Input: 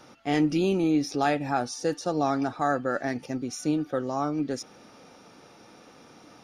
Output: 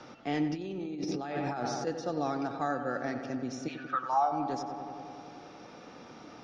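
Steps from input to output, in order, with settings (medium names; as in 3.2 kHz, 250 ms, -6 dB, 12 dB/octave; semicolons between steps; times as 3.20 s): 3.67–4.31 s: resonant high-pass 2 kHz -> 660 Hz, resonance Q 7.6; filtered feedback delay 93 ms, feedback 77%, low-pass 2.9 kHz, level -9.5 dB; 0.54–1.87 s: compressor with a negative ratio -30 dBFS, ratio -1; low-pass 6.1 kHz 24 dB/octave; three bands compressed up and down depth 40%; trim -6.5 dB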